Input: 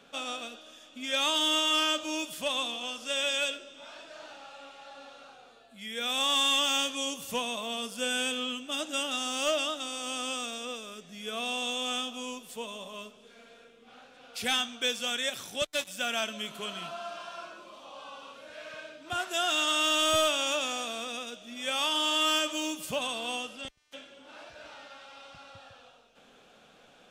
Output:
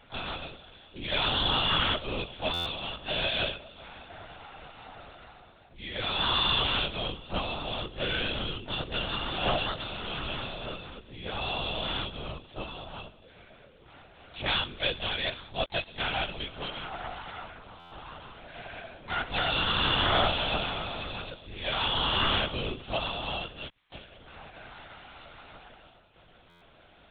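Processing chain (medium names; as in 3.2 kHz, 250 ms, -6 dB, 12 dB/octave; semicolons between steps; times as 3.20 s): harmony voices +4 st -8 dB, +7 st -8 dB; LPC vocoder at 8 kHz whisper; buffer glitch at 2.53/17.79/26.49 s, samples 512, times 10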